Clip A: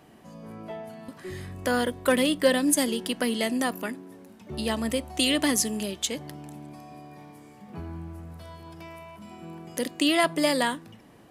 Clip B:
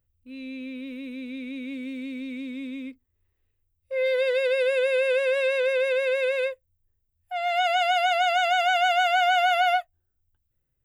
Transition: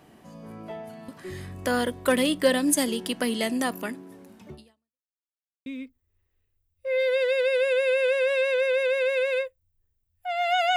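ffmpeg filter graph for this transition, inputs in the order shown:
ffmpeg -i cue0.wav -i cue1.wav -filter_complex "[0:a]apad=whole_dur=10.76,atrim=end=10.76,asplit=2[link_01][link_02];[link_01]atrim=end=5.09,asetpts=PTS-STARTPTS,afade=type=out:start_time=4.49:duration=0.6:curve=exp[link_03];[link_02]atrim=start=5.09:end=5.66,asetpts=PTS-STARTPTS,volume=0[link_04];[1:a]atrim=start=2.72:end=7.82,asetpts=PTS-STARTPTS,afade=type=in:duration=0.004:curve=hsin[link_05];[link_03][link_04][link_05]concat=n=3:v=0:a=1" out.wav

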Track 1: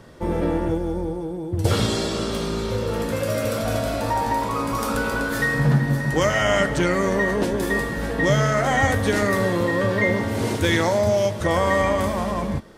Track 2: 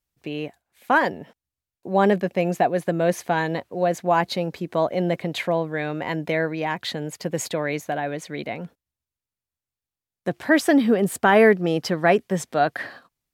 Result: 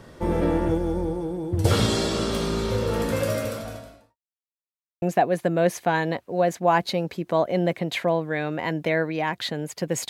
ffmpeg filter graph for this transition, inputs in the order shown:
ffmpeg -i cue0.wav -i cue1.wav -filter_complex "[0:a]apad=whole_dur=10.09,atrim=end=10.09,asplit=2[link_01][link_02];[link_01]atrim=end=4.17,asetpts=PTS-STARTPTS,afade=type=out:start_time=3.24:duration=0.93:curve=qua[link_03];[link_02]atrim=start=4.17:end=5.02,asetpts=PTS-STARTPTS,volume=0[link_04];[1:a]atrim=start=2.45:end=7.52,asetpts=PTS-STARTPTS,afade=type=in:duration=0.004:curve=hsin[link_05];[link_03][link_04][link_05]concat=n=3:v=0:a=1" out.wav

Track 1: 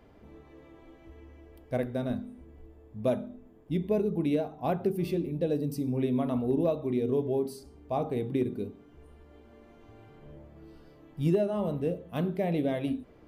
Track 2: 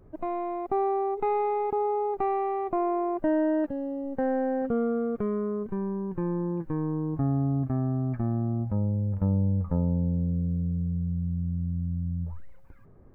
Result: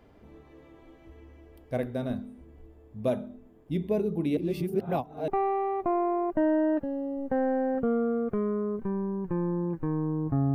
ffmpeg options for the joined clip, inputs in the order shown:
ffmpeg -i cue0.wav -i cue1.wav -filter_complex "[0:a]apad=whole_dur=10.54,atrim=end=10.54,asplit=2[link_01][link_02];[link_01]atrim=end=4.372[link_03];[link_02]atrim=start=4.368:end=5.282,asetpts=PTS-STARTPTS,areverse[link_04];[1:a]atrim=start=2.148:end=7.41[link_05];[link_03][link_04]acrossfade=duration=0.004:curve1=hsin:curve2=hsin[link_06];[link_06][link_05]acrossfade=duration=0.004:curve1=hsin:curve2=hsin" out.wav

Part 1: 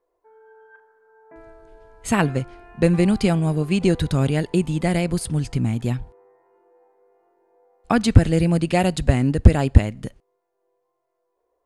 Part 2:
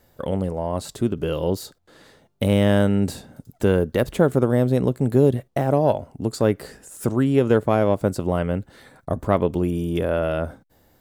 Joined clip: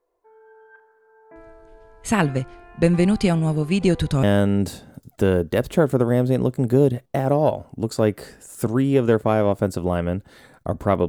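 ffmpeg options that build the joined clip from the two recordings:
ffmpeg -i cue0.wav -i cue1.wav -filter_complex "[0:a]apad=whole_dur=11.08,atrim=end=11.08,atrim=end=4.232[link_01];[1:a]atrim=start=2.648:end=9.5[link_02];[link_01][link_02]acrossfade=duration=0.004:curve1=hsin:curve2=hsin" out.wav

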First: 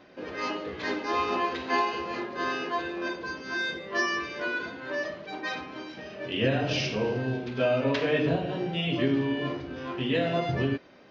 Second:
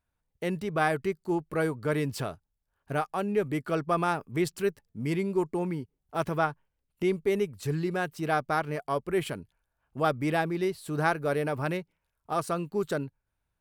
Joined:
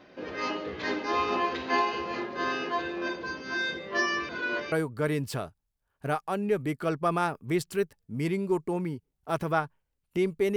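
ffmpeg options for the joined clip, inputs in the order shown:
ffmpeg -i cue0.wav -i cue1.wav -filter_complex "[0:a]apad=whole_dur=10.56,atrim=end=10.56,asplit=2[link_01][link_02];[link_01]atrim=end=4.292[link_03];[link_02]atrim=start=4.288:end=4.722,asetpts=PTS-STARTPTS,areverse[link_04];[1:a]atrim=start=1.578:end=7.42[link_05];[link_03][link_04]acrossfade=duration=0.004:curve1=hsin:curve2=hsin[link_06];[link_06][link_05]acrossfade=duration=0.004:curve1=hsin:curve2=hsin" out.wav

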